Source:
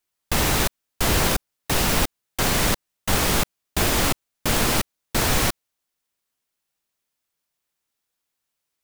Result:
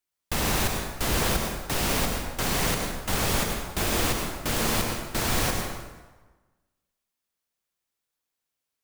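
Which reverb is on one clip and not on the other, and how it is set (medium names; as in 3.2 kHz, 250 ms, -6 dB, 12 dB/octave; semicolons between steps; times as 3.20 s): plate-style reverb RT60 1.3 s, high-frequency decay 0.7×, pre-delay 85 ms, DRR 2 dB; trim -6 dB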